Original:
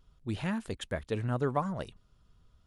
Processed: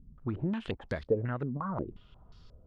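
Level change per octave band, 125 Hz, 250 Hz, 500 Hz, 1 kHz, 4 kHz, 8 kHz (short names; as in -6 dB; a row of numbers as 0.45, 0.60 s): -0.5 dB, 0.0 dB, +1.0 dB, -4.0 dB, -6.0 dB, under -15 dB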